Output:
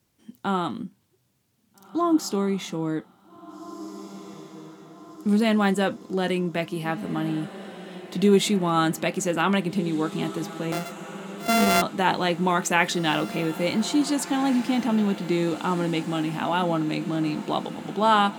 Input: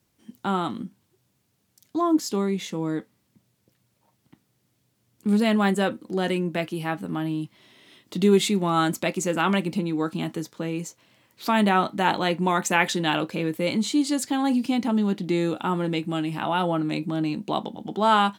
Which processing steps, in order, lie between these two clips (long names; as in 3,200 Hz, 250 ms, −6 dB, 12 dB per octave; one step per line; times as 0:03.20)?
0:10.72–0:11.82: samples sorted by size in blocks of 64 samples
feedback delay with all-pass diffusion 1,757 ms, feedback 58%, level −14.5 dB